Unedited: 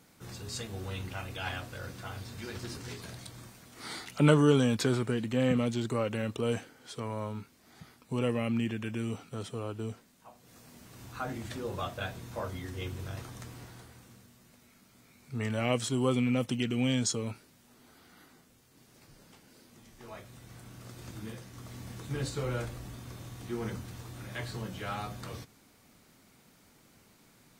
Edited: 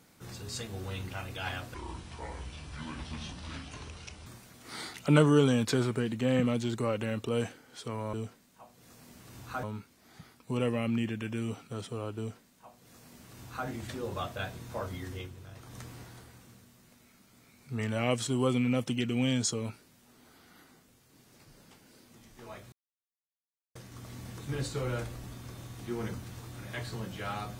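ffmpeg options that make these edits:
-filter_complex "[0:a]asplit=9[a][b][c][d][e][f][g][h][i];[a]atrim=end=1.744[j];[b]atrim=start=1.74:end=3.38,asetpts=PTS-STARTPTS,asetrate=28665,aresample=44100[k];[c]atrim=start=3.376:end=7.252[l];[d]atrim=start=9.788:end=11.292[m];[e]atrim=start=7.248:end=13.01,asetpts=PTS-STARTPTS,afade=t=out:st=5.502:d=0.26:c=qua:silence=0.354813[n];[f]atrim=start=13.01:end=13.13,asetpts=PTS-STARTPTS,volume=-9dB[o];[g]atrim=start=13.13:end=20.34,asetpts=PTS-STARTPTS,afade=t=in:d=0.26:c=qua:silence=0.354813,afade=t=out:st=7.206:d=0.004:c=hsin[p];[h]atrim=start=20.34:end=21.37,asetpts=PTS-STARTPTS,volume=0[q];[i]atrim=start=21.37,asetpts=PTS-STARTPTS,afade=t=in:d=0.004:c=hsin[r];[j][k]acrossfade=d=0.004:c1=hsin:c2=hsin[s];[s][l]acrossfade=d=0.004:c1=hsin:c2=hsin[t];[t][m]acrossfade=d=0.004:c1=hsin:c2=hsin[u];[n][o][p][q][r]concat=n=5:v=0:a=1[v];[u][v]acrossfade=d=0.004:c1=hsin:c2=hsin"

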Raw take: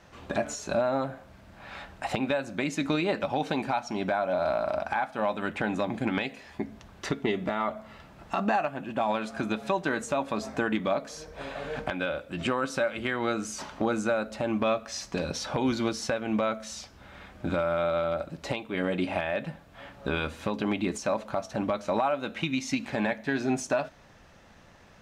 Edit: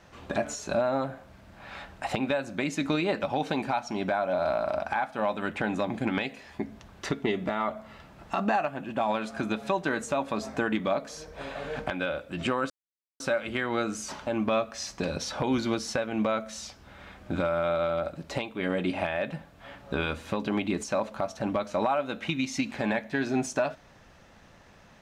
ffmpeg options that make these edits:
-filter_complex "[0:a]asplit=3[a][b][c];[a]atrim=end=12.7,asetpts=PTS-STARTPTS,afade=t=out:st=12.696:d=0.004:c=hsin,apad=pad_dur=0.5[d];[b]atrim=start=12.7:end=13.772,asetpts=PTS-STARTPTS,afade=t=in:d=0.004:c=hsin[e];[c]atrim=start=14.408[f];[d][e]concat=n=2:v=0:a=1[g];[g][f]acrossfade=d=0.004:c1=hsin:c2=hsin"

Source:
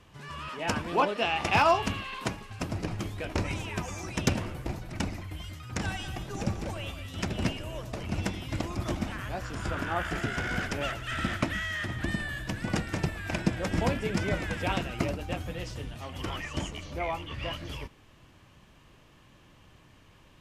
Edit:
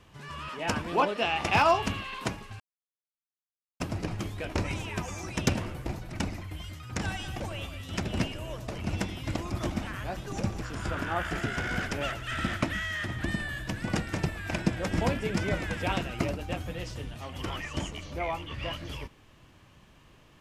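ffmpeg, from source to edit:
-filter_complex "[0:a]asplit=5[a][b][c][d][e];[a]atrim=end=2.6,asetpts=PTS-STARTPTS,afade=t=out:st=2.596:d=0.004:c=hsin,apad=pad_dur=1.2[f];[b]atrim=start=2.6:end=6.202,asetpts=PTS-STARTPTS,afade=t=in:d=0.004:c=hsin[g];[c]atrim=start=6.648:end=9.422[h];[d]atrim=start=6.198:end=6.652[i];[e]atrim=start=9.418[j];[f][g]concat=n=2:v=0:a=1[k];[k][h]acrossfade=d=0.004:c1=hsin:c2=hsin[l];[l][i]acrossfade=d=0.004:c1=hsin:c2=hsin[m];[m][j]acrossfade=d=0.004:c1=hsin:c2=hsin"

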